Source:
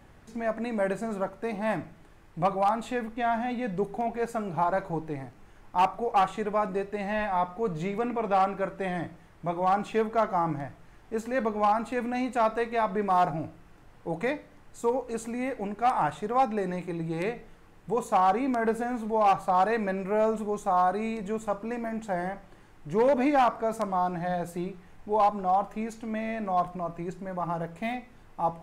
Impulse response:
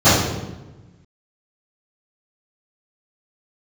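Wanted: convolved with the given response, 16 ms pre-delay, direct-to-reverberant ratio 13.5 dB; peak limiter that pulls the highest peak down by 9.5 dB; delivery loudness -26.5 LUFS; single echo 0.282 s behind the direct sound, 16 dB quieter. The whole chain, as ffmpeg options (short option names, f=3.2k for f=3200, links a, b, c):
-filter_complex "[0:a]alimiter=level_in=2dB:limit=-24dB:level=0:latency=1,volume=-2dB,aecho=1:1:282:0.158,asplit=2[a][b];[1:a]atrim=start_sample=2205,adelay=16[c];[b][c]afir=irnorm=-1:irlink=0,volume=-41dB[d];[a][d]amix=inputs=2:normalize=0,volume=8dB"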